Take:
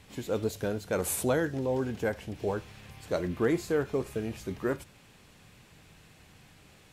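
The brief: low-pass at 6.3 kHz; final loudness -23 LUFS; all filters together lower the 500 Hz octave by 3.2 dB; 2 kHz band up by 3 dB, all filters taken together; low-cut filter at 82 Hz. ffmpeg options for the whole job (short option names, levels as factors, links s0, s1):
-af "highpass=82,lowpass=6300,equalizer=f=500:t=o:g=-4,equalizer=f=2000:t=o:g=4.5,volume=3.35"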